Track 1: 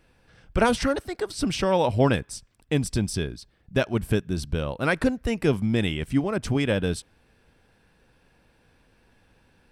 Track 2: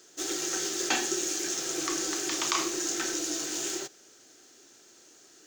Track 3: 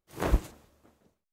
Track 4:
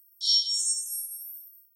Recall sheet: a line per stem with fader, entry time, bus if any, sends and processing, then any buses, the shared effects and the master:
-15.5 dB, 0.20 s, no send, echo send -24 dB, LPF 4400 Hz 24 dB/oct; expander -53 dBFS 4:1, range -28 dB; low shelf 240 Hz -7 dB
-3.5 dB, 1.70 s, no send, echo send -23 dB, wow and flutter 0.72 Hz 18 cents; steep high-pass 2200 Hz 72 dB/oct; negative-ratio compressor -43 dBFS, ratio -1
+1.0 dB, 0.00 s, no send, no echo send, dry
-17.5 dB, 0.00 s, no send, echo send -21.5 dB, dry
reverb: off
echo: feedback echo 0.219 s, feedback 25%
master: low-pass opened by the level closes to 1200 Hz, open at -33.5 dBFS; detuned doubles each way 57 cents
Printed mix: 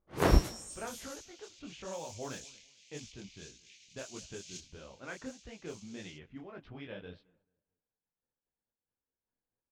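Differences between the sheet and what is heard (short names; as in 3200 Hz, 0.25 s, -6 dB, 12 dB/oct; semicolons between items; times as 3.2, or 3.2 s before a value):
stem 2: entry 1.70 s -> 0.70 s; stem 3 +1.0 dB -> +8.0 dB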